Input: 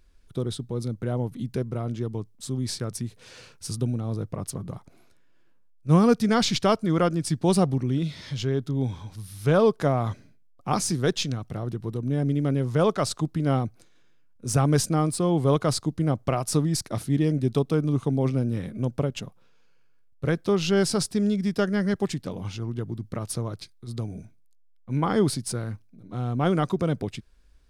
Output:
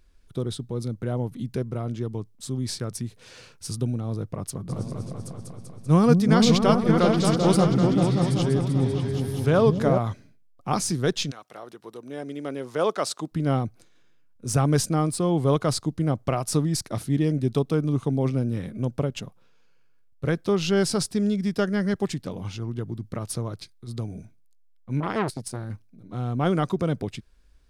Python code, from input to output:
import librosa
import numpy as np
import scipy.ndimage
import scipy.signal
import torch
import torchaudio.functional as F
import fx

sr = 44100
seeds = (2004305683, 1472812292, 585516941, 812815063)

y = fx.echo_opening(x, sr, ms=194, hz=200, octaves=2, feedback_pct=70, wet_db=0, at=(4.68, 9.97), fade=0.02)
y = fx.highpass(y, sr, hz=fx.line((11.3, 690.0), (13.31, 280.0)), slope=12, at=(11.3, 13.31), fade=0.02)
y = fx.transformer_sat(y, sr, knee_hz=1000.0, at=(25.0, 25.7))